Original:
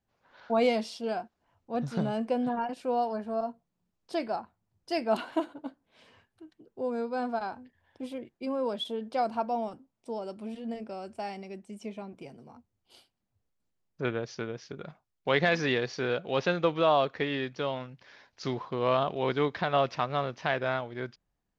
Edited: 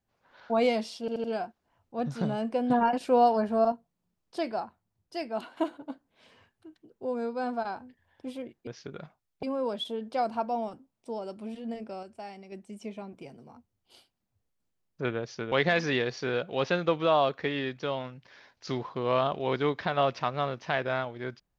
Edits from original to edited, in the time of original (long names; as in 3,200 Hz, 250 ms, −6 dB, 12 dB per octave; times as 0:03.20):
0:01.00: stutter 0.08 s, 4 plays
0:02.46–0:03.48: clip gain +7 dB
0:04.39–0:05.33: fade out, to −9.5 dB
0:11.03–0:11.52: clip gain −5.5 dB
0:14.52–0:15.28: move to 0:08.43